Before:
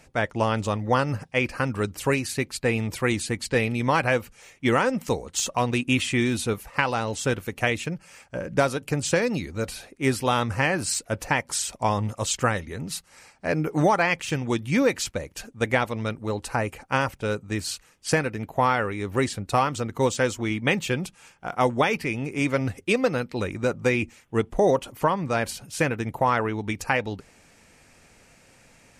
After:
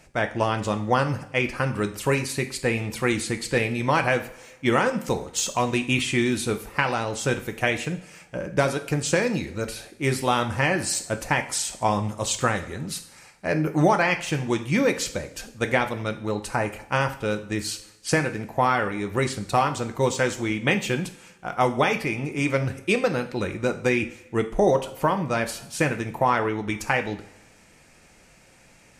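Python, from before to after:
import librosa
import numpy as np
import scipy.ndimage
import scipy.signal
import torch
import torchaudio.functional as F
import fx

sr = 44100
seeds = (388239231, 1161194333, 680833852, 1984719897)

y = fx.rev_double_slope(x, sr, seeds[0], early_s=0.48, late_s=1.6, knee_db=-18, drr_db=6.5)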